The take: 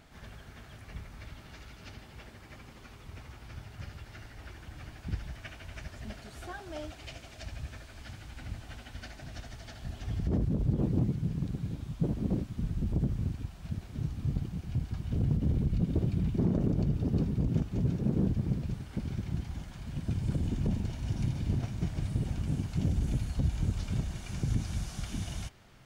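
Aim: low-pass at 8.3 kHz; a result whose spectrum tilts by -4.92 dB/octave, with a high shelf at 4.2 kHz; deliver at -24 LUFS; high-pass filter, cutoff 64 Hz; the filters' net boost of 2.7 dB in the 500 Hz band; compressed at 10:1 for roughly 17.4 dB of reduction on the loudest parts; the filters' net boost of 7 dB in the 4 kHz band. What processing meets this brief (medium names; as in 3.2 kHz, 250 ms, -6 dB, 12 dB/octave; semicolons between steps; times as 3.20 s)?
high-pass 64 Hz; low-pass 8.3 kHz; peaking EQ 500 Hz +3.5 dB; peaking EQ 4 kHz +5 dB; treble shelf 4.2 kHz +7.5 dB; compression 10:1, threshold -42 dBFS; trim +23 dB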